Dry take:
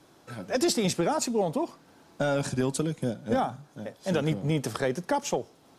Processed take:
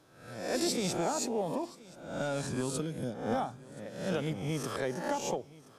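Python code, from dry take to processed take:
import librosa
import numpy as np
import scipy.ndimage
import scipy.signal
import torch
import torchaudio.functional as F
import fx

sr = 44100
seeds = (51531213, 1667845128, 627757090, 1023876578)

p1 = fx.spec_swells(x, sr, rise_s=0.67)
p2 = p1 + fx.echo_single(p1, sr, ms=1026, db=-21.0, dry=0)
y = p2 * librosa.db_to_amplitude(-8.0)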